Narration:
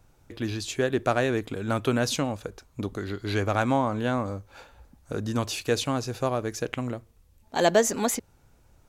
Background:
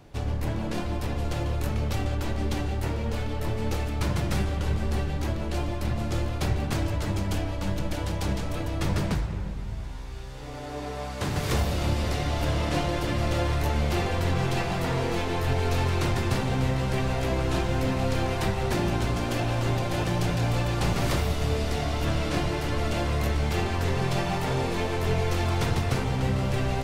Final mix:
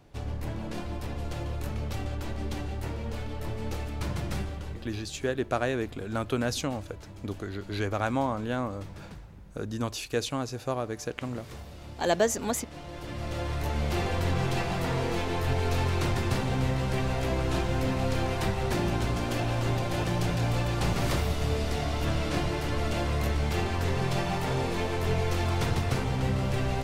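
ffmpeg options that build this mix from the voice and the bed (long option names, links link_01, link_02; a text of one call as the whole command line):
ffmpeg -i stem1.wav -i stem2.wav -filter_complex "[0:a]adelay=4450,volume=-4dB[link_01];[1:a]volume=10.5dB,afade=type=out:start_time=4.33:duration=0.57:silence=0.237137,afade=type=in:start_time=12.75:duration=1.34:silence=0.158489[link_02];[link_01][link_02]amix=inputs=2:normalize=0" out.wav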